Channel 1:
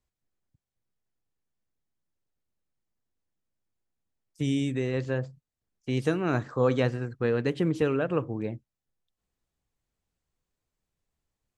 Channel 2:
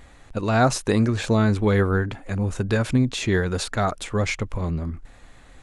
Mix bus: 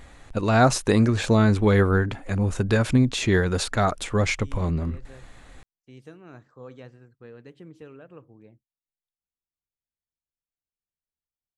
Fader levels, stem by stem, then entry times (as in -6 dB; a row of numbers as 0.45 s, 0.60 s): -19.0 dB, +1.0 dB; 0.00 s, 0.00 s